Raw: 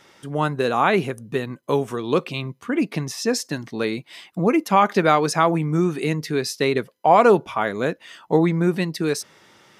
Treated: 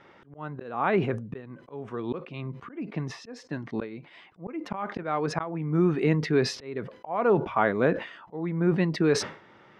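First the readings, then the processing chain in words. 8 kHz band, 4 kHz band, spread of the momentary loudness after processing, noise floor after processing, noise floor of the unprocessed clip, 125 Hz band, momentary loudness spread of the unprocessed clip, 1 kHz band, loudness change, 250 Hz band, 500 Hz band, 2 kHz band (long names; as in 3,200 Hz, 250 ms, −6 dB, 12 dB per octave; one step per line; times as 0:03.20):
−10.0 dB, −8.0 dB, 16 LU, −55 dBFS, −58 dBFS, −4.5 dB, 11 LU, −11.0 dB, −7.0 dB, −6.0 dB, −7.0 dB, −7.5 dB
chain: volume swells 585 ms
low-pass filter 2,000 Hz 12 dB per octave
level that may fall only so fast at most 120 dB per second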